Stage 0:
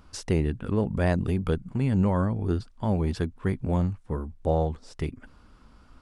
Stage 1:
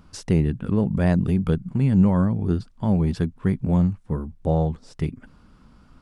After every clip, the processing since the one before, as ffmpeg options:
ffmpeg -i in.wav -af "equalizer=frequency=170:width=1.3:gain=8.5" out.wav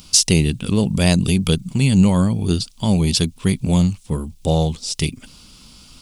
ffmpeg -i in.wav -af "aexciter=amount=6.2:drive=8.6:freq=2500,volume=3.5dB" out.wav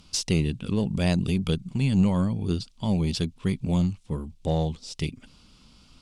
ffmpeg -i in.wav -af "aemphasis=mode=reproduction:type=50fm,aeval=exprs='0.668*(cos(1*acos(clip(val(0)/0.668,-1,1)))-cos(1*PI/2))+0.015*(cos(6*acos(clip(val(0)/0.668,-1,1)))-cos(6*PI/2))':channel_layout=same,volume=-8dB" out.wav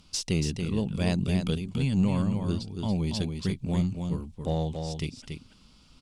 ffmpeg -i in.wav -af "aecho=1:1:282:0.501,volume=-3.5dB" out.wav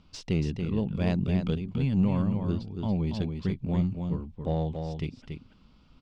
ffmpeg -i in.wav -af "adynamicsmooth=sensitivity=0.5:basefreq=2800" out.wav

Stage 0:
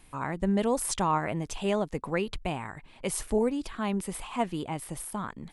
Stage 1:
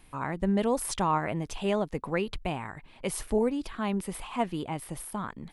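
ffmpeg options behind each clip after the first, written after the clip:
ffmpeg -i in.wav -af "equalizer=frequency=7500:width_type=o:width=0.75:gain=-5" out.wav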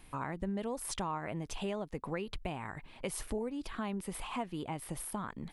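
ffmpeg -i in.wav -af "acompressor=threshold=-35dB:ratio=4" out.wav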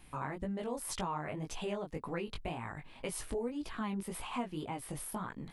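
ffmpeg -i in.wav -af "flanger=delay=16.5:depth=4.8:speed=1.9,volume=2.5dB" out.wav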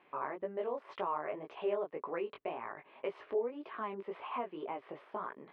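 ffmpeg -i in.wav -af "highpass=390,equalizer=frequency=400:width_type=q:width=4:gain=10,equalizer=frequency=600:width_type=q:width=4:gain=7,equalizer=frequency=1100:width_type=q:width=4:gain=6,lowpass=frequency=2700:width=0.5412,lowpass=frequency=2700:width=1.3066,volume=-2dB" out.wav

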